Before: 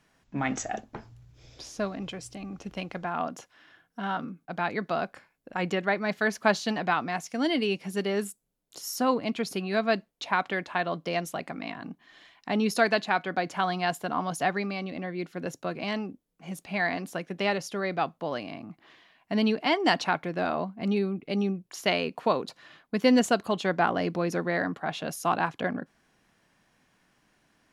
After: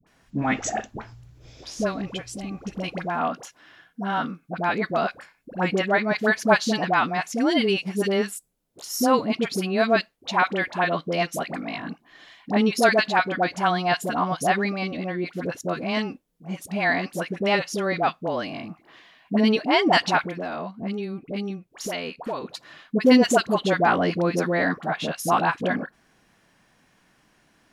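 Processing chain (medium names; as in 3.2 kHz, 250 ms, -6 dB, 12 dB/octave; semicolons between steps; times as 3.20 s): 20.23–22.43 s: compression 3:1, threshold -35 dBFS, peak gain reduction 12.5 dB; phase dispersion highs, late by 68 ms, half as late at 770 Hz; trim +5.5 dB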